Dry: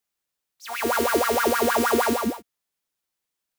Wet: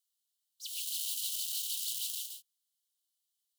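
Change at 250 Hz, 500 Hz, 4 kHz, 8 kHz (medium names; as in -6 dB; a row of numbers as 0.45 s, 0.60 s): under -40 dB, under -40 dB, -4.0 dB, -4.0 dB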